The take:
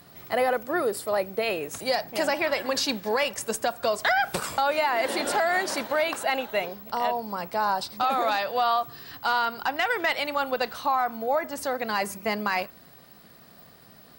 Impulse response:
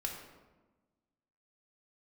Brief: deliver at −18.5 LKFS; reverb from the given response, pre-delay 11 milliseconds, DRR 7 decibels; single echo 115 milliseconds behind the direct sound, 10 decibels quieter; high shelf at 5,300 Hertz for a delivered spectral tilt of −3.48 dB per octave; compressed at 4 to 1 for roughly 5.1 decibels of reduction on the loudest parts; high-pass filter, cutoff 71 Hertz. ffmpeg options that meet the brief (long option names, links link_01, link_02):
-filter_complex "[0:a]highpass=71,highshelf=frequency=5300:gain=-5,acompressor=threshold=-26dB:ratio=4,aecho=1:1:115:0.316,asplit=2[link_01][link_02];[1:a]atrim=start_sample=2205,adelay=11[link_03];[link_02][link_03]afir=irnorm=-1:irlink=0,volume=-8dB[link_04];[link_01][link_04]amix=inputs=2:normalize=0,volume=11dB"